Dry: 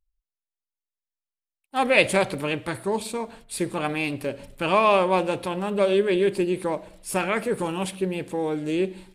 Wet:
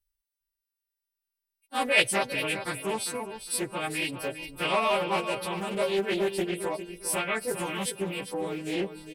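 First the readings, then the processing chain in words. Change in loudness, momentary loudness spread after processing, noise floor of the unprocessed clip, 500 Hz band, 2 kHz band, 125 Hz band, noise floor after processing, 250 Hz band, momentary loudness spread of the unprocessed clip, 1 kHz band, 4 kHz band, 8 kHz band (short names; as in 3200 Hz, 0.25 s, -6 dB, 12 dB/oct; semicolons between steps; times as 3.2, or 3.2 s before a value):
-4.5 dB, 9 LU, under -85 dBFS, -6.5 dB, -2.0 dB, -7.0 dB, under -85 dBFS, -7.0 dB, 11 LU, -5.5 dB, +1.0 dB, +3.5 dB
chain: frequency quantiser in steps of 2 st; notch 7100 Hz, Q 6.6; in parallel at -0.5 dB: compressor, threshold -31 dBFS, peak gain reduction 20 dB; on the sum: reverb removal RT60 0.59 s; on a send: feedback echo 0.403 s, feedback 22%, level -10 dB; on the sum: Doppler distortion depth 0.31 ms; gain -7.5 dB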